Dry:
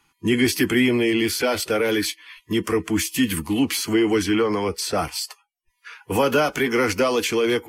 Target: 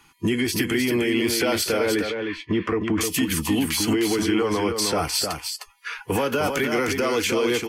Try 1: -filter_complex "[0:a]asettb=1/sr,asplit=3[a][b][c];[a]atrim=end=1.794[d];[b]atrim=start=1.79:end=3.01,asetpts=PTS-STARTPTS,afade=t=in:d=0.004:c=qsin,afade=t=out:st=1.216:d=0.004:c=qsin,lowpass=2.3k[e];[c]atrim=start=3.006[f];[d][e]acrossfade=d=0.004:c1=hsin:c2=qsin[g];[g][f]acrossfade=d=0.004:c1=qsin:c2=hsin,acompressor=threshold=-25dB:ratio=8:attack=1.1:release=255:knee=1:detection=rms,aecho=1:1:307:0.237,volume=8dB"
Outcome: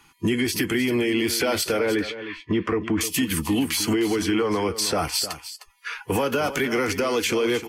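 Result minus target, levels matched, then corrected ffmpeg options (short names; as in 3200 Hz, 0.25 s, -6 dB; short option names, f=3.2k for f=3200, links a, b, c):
echo-to-direct -7 dB
-filter_complex "[0:a]asettb=1/sr,asplit=3[a][b][c];[a]atrim=end=1.794[d];[b]atrim=start=1.79:end=3.01,asetpts=PTS-STARTPTS,afade=t=in:d=0.004:c=qsin,afade=t=out:st=1.216:d=0.004:c=qsin,lowpass=2.3k[e];[c]atrim=start=3.006[f];[d][e]acrossfade=d=0.004:c1=hsin:c2=qsin[g];[g][f]acrossfade=d=0.004:c1=qsin:c2=hsin,acompressor=threshold=-25dB:ratio=8:attack=1.1:release=255:knee=1:detection=rms,aecho=1:1:307:0.531,volume=8dB"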